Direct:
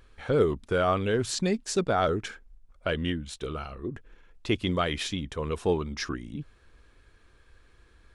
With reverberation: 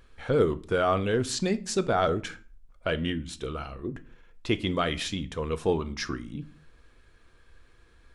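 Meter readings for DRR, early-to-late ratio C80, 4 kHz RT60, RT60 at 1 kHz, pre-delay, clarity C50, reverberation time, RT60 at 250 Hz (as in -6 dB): 11.5 dB, 24.0 dB, 0.30 s, 0.40 s, 4 ms, 19.0 dB, 0.45 s, n/a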